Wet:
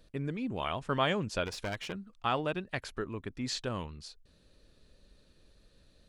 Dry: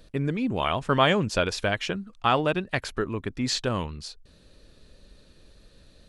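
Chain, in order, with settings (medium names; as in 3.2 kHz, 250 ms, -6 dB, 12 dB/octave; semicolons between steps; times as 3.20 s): 1.45–1.93 s: one-sided clip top -31 dBFS; trim -8.5 dB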